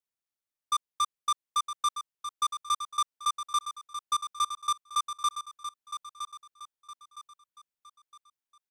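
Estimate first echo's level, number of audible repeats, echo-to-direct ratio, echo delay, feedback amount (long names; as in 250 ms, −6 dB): −9.5 dB, 4, −9.0 dB, 963 ms, 38%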